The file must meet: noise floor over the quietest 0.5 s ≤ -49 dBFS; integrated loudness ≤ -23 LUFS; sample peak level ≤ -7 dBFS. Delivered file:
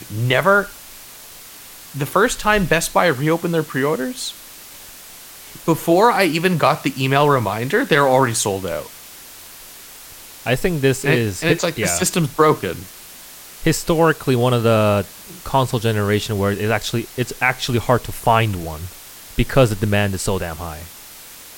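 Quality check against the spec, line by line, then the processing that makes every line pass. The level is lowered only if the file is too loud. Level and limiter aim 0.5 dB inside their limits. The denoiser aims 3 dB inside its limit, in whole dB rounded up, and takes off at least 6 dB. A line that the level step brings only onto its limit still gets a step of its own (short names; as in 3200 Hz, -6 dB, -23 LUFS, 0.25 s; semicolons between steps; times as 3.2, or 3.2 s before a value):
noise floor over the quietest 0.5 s -39 dBFS: fail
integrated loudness -18.0 LUFS: fail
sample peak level -2.0 dBFS: fail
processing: denoiser 8 dB, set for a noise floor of -39 dBFS; gain -5.5 dB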